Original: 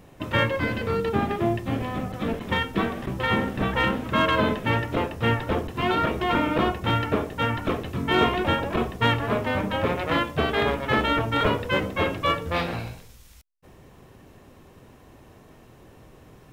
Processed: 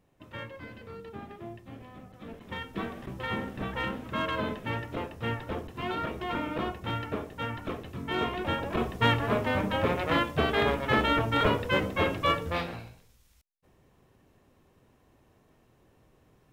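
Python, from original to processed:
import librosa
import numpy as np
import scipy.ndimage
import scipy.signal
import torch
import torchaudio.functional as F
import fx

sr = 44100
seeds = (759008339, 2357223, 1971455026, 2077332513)

y = fx.gain(x, sr, db=fx.line((2.13, -18.5), (2.84, -9.5), (8.27, -9.5), (8.97, -2.5), (12.44, -2.5), (12.91, -13.0)))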